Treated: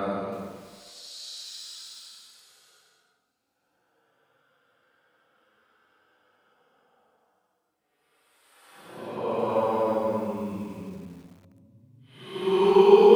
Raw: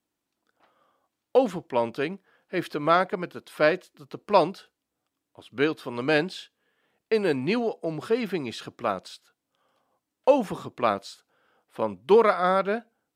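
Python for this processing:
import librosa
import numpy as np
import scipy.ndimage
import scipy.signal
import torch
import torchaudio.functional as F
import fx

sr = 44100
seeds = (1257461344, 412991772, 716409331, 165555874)

y = fx.paulstretch(x, sr, seeds[0], factor=11.0, window_s=0.1, from_s=10.95)
y = fx.echo_crushed(y, sr, ms=323, feedback_pct=35, bits=7, wet_db=-14)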